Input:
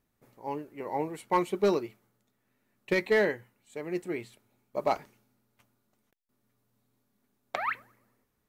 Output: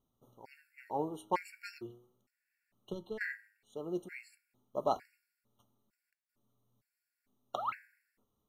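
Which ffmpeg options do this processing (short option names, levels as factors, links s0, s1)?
-filter_complex "[0:a]flanger=delay=7.6:depth=2:regen=89:speed=0.42:shape=triangular,asettb=1/sr,asplit=3[s0][s1][s2];[s0]atrim=end=1.784[s3];[s1]atrim=start=1.78:end=3.21,asetpts=PTS-STARTPTS,afade=t=in:d=0.004:c=qsin,afade=t=out:st=1.426:d=0.004:c=qsin,acrossover=split=160[s4][s5];[s5]acompressor=threshold=0.00708:ratio=4[s6];[s4][s6]amix=inputs=2:normalize=0[s7];[s2]atrim=start=3.206[s8];[s3][s7]acrossfade=d=0.004:c1=hsin:c2=qsin[s9];[s9][s8]acrossfade=d=0.004:c1=qsin:c2=hsin,afftfilt=real='re*gt(sin(2*PI*1.1*pts/sr)*(1-2*mod(floor(b*sr/1024/1400),2)),0)':imag='im*gt(sin(2*PI*1.1*pts/sr)*(1-2*mod(floor(b*sr/1024/1400),2)),0)':win_size=1024:overlap=0.75,volume=1.12"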